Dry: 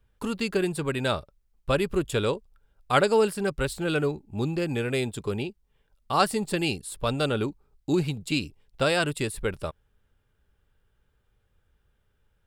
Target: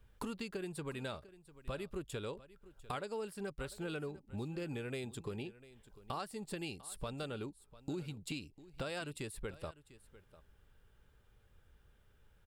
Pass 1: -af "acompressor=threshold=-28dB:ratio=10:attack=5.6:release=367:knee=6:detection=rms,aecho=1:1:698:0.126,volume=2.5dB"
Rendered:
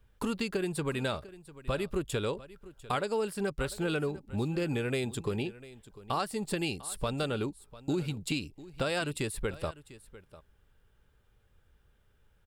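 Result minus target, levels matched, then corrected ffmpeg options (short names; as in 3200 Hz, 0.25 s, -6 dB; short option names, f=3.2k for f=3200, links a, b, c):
compressor: peak gain reduction -10 dB
-af "acompressor=threshold=-39dB:ratio=10:attack=5.6:release=367:knee=6:detection=rms,aecho=1:1:698:0.126,volume=2.5dB"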